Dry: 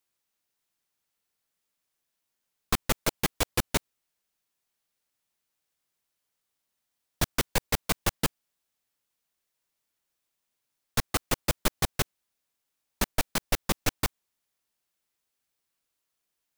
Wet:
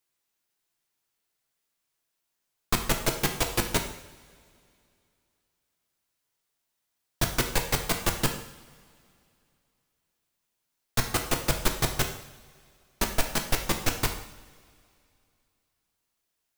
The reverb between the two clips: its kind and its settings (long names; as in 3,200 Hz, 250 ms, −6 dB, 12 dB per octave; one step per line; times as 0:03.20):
coupled-rooms reverb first 0.69 s, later 2.7 s, from −19 dB, DRR 3 dB